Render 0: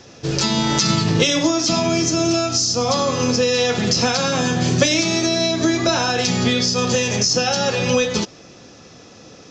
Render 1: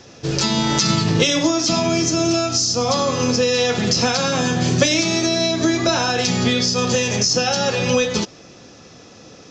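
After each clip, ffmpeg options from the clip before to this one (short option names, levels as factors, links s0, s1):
-af anull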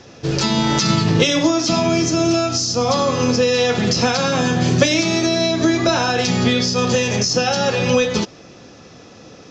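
-af "highshelf=f=6300:g=-9,volume=1.26"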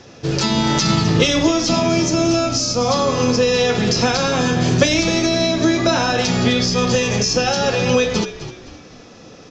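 -filter_complex "[0:a]asplit=5[s0][s1][s2][s3][s4];[s1]adelay=258,afreqshift=-65,volume=0.224[s5];[s2]adelay=516,afreqshift=-130,volume=0.0832[s6];[s3]adelay=774,afreqshift=-195,volume=0.0305[s7];[s4]adelay=1032,afreqshift=-260,volume=0.0114[s8];[s0][s5][s6][s7][s8]amix=inputs=5:normalize=0"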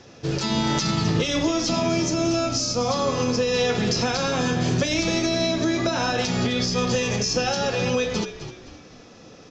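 -af "alimiter=limit=0.422:level=0:latency=1:release=147,volume=0.562"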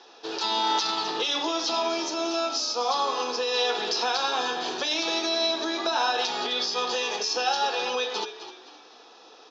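-af "highpass=f=410:w=0.5412,highpass=f=410:w=1.3066,equalizer=f=560:t=q:w=4:g=-10,equalizer=f=870:t=q:w=4:g=7,equalizer=f=2100:t=q:w=4:g=-9,equalizer=f=3700:t=q:w=4:g=5,lowpass=f=5400:w=0.5412,lowpass=f=5400:w=1.3066"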